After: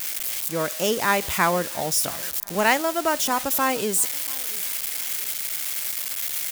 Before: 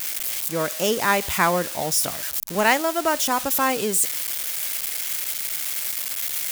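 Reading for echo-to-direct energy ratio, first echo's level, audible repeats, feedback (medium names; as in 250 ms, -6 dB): -23.0 dB, -23.5 dB, 2, 37%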